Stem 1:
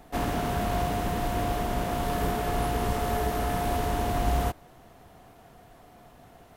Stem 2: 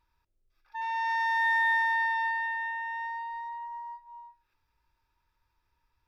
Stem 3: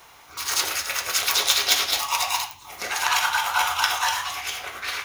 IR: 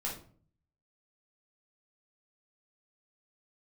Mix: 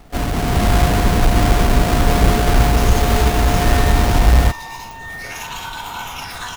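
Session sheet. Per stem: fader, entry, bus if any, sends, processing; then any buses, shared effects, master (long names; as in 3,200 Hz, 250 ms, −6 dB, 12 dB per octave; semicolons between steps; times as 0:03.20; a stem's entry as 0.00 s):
+0.5 dB, 0.00 s, no bus, no send, each half-wave held at its own peak; low-shelf EQ 84 Hz +7 dB
+1.5 dB, 2.45 s, bus A, no send, no processing
−5.0 dB, 2.40 s, bus A, send −8 dB, downward compressor, threshold −26 dBFS, peak gain reduction 11.5 dB; brickwall limiter −19 dBFS, peak gain reduction 8 dB
bus A: 0.0 dB, all-pass phaser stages 8, 0.39 Hz, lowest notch 360–1,800 Hz; downward compressor, threshold −37 dBFS, peak gain reduction 14 dB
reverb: on, RT60 0.50 s, pre-delay 8 ms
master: automatic gain control gain up to 7.5 dB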